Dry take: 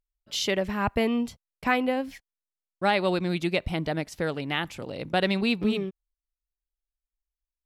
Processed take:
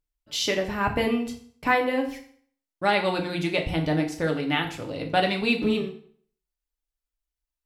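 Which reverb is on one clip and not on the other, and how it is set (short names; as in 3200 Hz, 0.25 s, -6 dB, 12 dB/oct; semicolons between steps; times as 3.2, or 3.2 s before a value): FDN reverb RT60 0.55 s, low-frequency decay 1×, high-frequency decay 0.85×, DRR 1.5 dB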